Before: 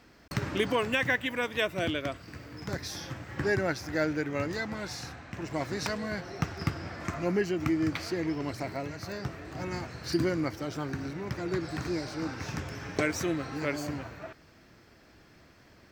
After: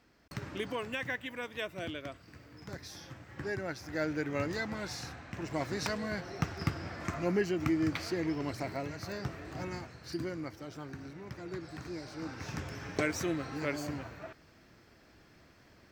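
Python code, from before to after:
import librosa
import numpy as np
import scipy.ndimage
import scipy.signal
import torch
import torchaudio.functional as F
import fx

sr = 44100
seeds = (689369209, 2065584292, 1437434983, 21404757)

y = fx.gain(x, sr, db=fx.line((3.62, -9.0), (4.31, -2.0), (9.57, -2.0), (9.99, -9.5), (11.91, -9.5), (12.62, -3.0)))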